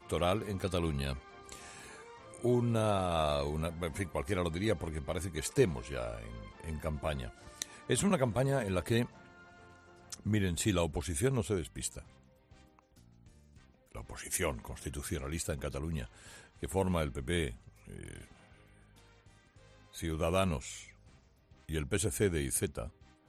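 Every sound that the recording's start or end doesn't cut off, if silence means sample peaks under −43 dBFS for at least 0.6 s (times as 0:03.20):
0:10.10–0:12.01
0:13.95–0:18.24
0:19.95–0:20.84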